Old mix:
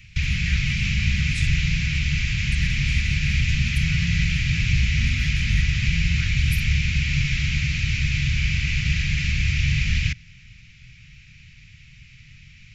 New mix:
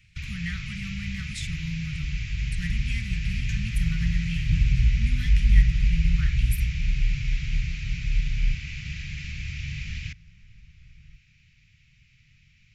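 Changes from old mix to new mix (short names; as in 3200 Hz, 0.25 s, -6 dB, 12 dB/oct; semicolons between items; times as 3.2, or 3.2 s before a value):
first sound -12.0 dB; second sound: remove HPF 77 Hz 12 dB/oct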